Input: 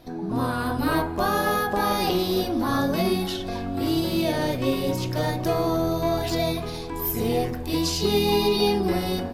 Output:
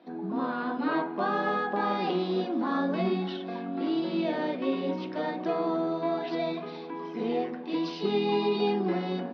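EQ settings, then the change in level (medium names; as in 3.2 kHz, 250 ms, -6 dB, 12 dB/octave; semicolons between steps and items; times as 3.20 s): Chebyshev band-pass 180–5900 Hz, order 5; distance through air 490 m; treble shelf 2.9 kHz +9.5 dB; -3.0 dB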